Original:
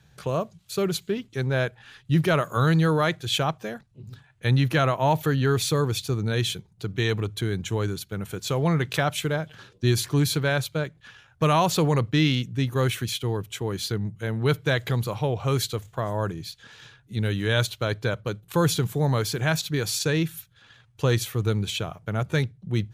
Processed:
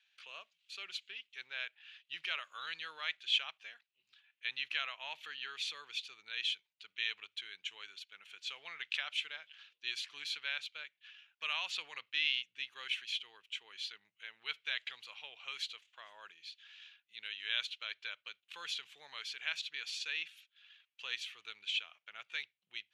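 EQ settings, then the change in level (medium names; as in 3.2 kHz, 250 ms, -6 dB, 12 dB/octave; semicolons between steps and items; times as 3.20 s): ladder band-pass 3.1 kHz, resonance 55%; treble shelf 4.1 kHz -11 dB; +6.0 dB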